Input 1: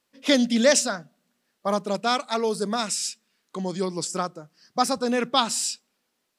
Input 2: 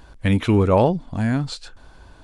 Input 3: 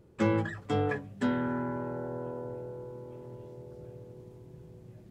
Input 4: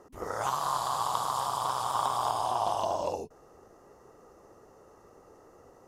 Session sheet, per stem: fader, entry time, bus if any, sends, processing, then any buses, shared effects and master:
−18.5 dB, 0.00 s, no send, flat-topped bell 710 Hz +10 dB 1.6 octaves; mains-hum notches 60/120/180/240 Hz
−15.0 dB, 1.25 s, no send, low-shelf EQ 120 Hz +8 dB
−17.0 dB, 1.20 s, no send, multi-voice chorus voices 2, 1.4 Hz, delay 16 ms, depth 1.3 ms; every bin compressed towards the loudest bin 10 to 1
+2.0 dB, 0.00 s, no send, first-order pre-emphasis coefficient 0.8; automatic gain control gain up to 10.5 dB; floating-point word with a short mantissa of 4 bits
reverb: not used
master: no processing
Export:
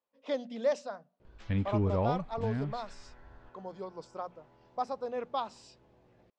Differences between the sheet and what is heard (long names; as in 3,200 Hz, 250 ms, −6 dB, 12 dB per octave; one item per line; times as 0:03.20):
stem 4: muted
master: extra high-frequency loss of the air 170 metres